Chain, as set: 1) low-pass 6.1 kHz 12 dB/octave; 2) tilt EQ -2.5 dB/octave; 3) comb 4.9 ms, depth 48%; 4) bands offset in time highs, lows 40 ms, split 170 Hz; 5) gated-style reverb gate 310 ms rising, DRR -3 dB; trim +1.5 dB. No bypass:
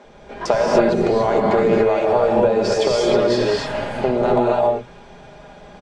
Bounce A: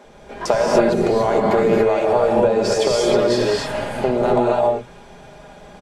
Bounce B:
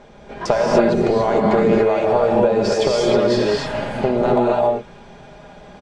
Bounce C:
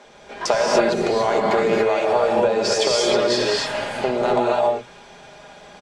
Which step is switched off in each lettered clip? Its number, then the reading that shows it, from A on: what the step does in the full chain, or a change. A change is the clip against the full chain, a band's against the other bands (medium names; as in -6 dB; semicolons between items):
1, 8 kHz band +4.0 dB; 4, 125 Hz band +2.0 dB; 2, 8 kHz band +8.0 dB